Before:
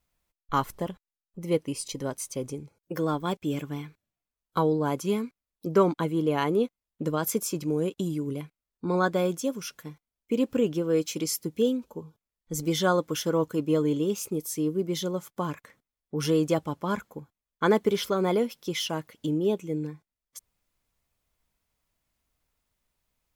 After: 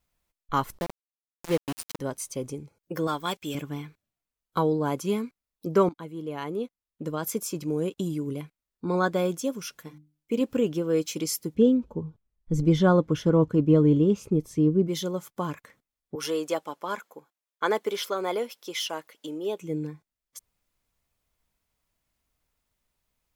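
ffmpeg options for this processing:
ffmpeg -i in.wav -filter_complex "[0:a]asplit=3[link_01][link_02][link_03];[link_01]afade=type=out:start_time=0.77:duration=0.02[link_04];[link_02]aeval=exprs='val(0)*gte(abs(val(0)),0.0355)':channel_layout=same,afade=type=in:start_time=0.77:duration=0.02,afade=type=out:start_time=1.99:duration=0.02[link_05];[link_03]afade=type=in:start_time=1.99:duration=0.02[link_06];[link_04][link_05][link_06]amix=inputs=3:normalize=0,asettb=1/sr,asplit=3[link_07][link_08][link_09];[link_07]atrim=end=3.074[link_10];[link_08]atrim=start=3.07:end=3.55,asetpts=PTS-STARTPTS,afade=type=in:duration=0.004:curve=qsin,afade=type=out:start_time=0.476:duration=0.004:curve=qsin,tiltshelf=frequency=810:gain=-7[link_11];[link_09]atrim=start=3.546[link_12];[link_10][link_11]acrossfade=duration=0.004:curve1=hsin:curve2=qsin[link_13];[link_13][link_12]acrossfade=duration=0.004:curve1=qsin:curve2=hsin,asettb=1/sr,asplit=3[link_14][link_15][link_16];[link_14]atrim=end=9.714[link_17];[link_15]atrim=start=9.71:end=10.41,asetpts=PTS-STARTPTS,afade=type=in:duration=0.004:curve=qsin,afade=type=out:start_time=0.696:duration=0.004:curve=qsin,bandreject=frequency=50:width_type=h:width=6,bandreject=frequency=100:width_type=h:width=6,bandreject=frequency=150:width_type=h:width=6,bandreject=frequency=200:width_type=h:width=6,bandreject=frequency=250:width_type=h:width=6,bandreject=frequency=300:width_type=h:width=6[link_18];[link_16]atrim=start=10.406[link_19];[link_17][link_18]acrossfade=duration=0.004:curve1=hsin:curve2=qsin[link_20];[link_20][link_19]acrossfade=duration=0.004:curve1=qsin:curve2=hsin,asplit=3[link_21][link_22][link_23];[link_21]afade=type=out:start_time=11.54:duration=0.02[link_24];[link_22]aemphasis=mode=reproduction:type=riaa,afade=type=in:start_time=11.54:duration=0.02,afade=type=out:start_time=14.87:duration=0.02[link_25];[link_23]afade=type=in:start_time=14.87:duration=0.02[link_26];[link_24][link_25][link_26]amix=inputs=3:normalize=0,asettb=1/sr,asplit=3[link_27][link_28][link_29];[link_27]atrim=end=16.154[link_30];[link_28]atrim=start=16.15:end=19.61,asetpts=PTS-STARTPTS,afade=type=in:duration=0.004:curve=qsin,afade=type=out:start_time=3.456:duration=0.004:curve=qsin,highpass=460[link_31];[link_29]atrim=start=19.606[link_32];[link_30][link_31]acrossfade=duration=0.004:curve1=hsin:curve2=qsin[link_33];[link_33][link_32]acrossfade=duration=0.004:curve1=qsin:curve2=hsin,asplit=2[link_34][link_35];[link_34]atrim=end=5.89,asetpts=PTS-STARTPTS,afade=type=out:start_time=5.886:duration=0.004:curve=hsin:silence=0.211349[link_36];[link_35]atrim=start=5.89,asetpts=PTS-STARTPTS,afade=type=in:duration=2.11:silence=0.211349[link_37];[link_36][link_37]concat=n=2:v=0:a=1" out.wav

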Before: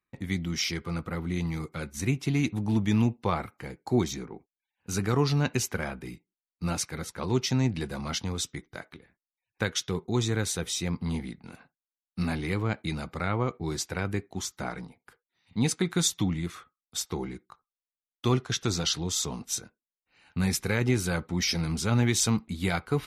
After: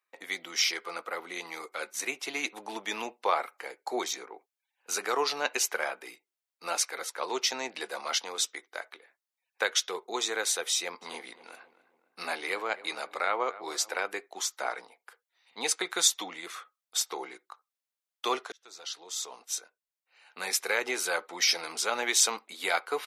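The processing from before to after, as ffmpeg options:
ffmpeg -i in.wav -filter_complex "[0:a]asplit=3[link_01][link_02][link_03];[link_01]afade=type=out:start_time=11.01:duration=0.02[link_04];[link_02]asplit=2[link_05][link_06];[link_06]adelay=265,lowpass=frequency=2000:poles=1,volume=-16dB,asplit=2[link_07][link_08];[link_08]adelay=265,lowpass=frequency=2000:poles=1,volume=0.47,asplit=2[link_09][link_10];[link_10]adelay=265,lowpass=frequency=2000:poles=1,volume=0.47,asplit=2[link_11][link_12];[link_12]adelay=265,lowpass=frequency=2000:poles=1,volume=0.47[link_13];[link_05][link_07][link_09][link_11][link_13]amix=inputs=5:normalize=0,afade=type=in:start_time=11.01:duration=0.02,afade=type=out:start_time=14:duration=0.02[link_14];[link_03]afade=type=in:start_time=14:duration=0.02[link_15];[link_04][link_14][link_15]amix=inputs=3:normalize=0,asplit=2[link_16][link_17];[link_16]atrim=end=18.52,asetpts=PTS-STARTPTS,afade=type=out:start_time=18.516:duration=0.004:curve=hsin[link_18];[link_17]atrim=start=18.52,asetpts=PTS-STARTPTS,afade=type=in:duration=2.89:curve=qsin[link_19];[link_18][link_19]concat=n=2:v=0:a=1,highpass=frequency=490:width=0.5412,highpass=frequency=490:width=1.3066,volume=3.5dB" out.wav

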